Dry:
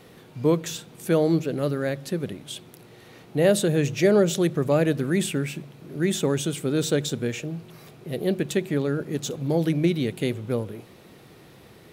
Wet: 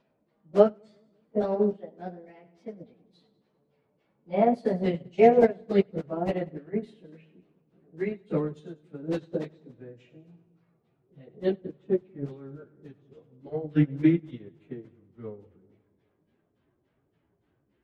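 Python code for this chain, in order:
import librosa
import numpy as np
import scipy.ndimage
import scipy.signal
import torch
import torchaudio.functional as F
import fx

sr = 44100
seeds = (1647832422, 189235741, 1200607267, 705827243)

p1 = fx.speed_glide(x, sr, from_pct=131, to_pct=83)
p2 = fx.high_shelf(p1, sr, hz=4800.0, db=-11.5)
p3 = fx.level_steps(p2, sr, step_db=11)
p4 = p2 + (p3 * librosa.db_to_amplitude(2.0))
p5 = fx.filter_lfo_lowpass(p4, sr, shape='saw_down', hz=5.6, low_hz=400.0, high_hz=5900.0, q=0.79)
p6 = fx.stretch_vocoder_free(p5, sr, factor=1.6)
p7 = fx.echo_split(p6, sr, split_hz=470.0, low_ms=187, high_ms=98, feedback_pct=52, wet_db=-14)
y = fx.upward_expand(p7, sr, threshold_db=-28.0, expansion=2.5)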